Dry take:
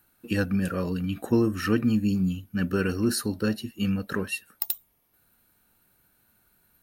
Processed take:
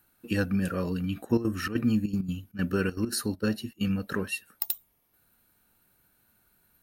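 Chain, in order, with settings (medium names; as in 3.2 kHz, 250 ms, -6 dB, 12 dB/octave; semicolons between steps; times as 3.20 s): 1.23–3.88 s: trance gate ".xxxx.x.xxx" 197 bpm -12 dB; trim -1.5 dB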